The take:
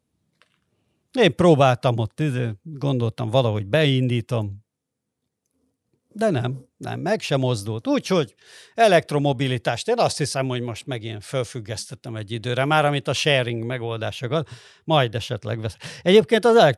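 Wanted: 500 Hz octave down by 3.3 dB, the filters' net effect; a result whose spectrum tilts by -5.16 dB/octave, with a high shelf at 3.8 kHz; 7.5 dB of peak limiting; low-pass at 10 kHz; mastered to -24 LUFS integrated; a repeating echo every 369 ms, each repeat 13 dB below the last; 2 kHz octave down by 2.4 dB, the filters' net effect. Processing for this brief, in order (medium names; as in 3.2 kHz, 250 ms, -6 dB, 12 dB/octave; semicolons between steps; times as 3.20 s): low-pass 10 kHz; peaking EQ 500 Hz -4 dB; peaking EQ 2 kHz -4.5 dB; treble shelf 3.8 kHz +5.5 dB; peak limiter -11.5 dBFS; feedback delay 369 ms, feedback 22%, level -13 dB; trim +1.5 dB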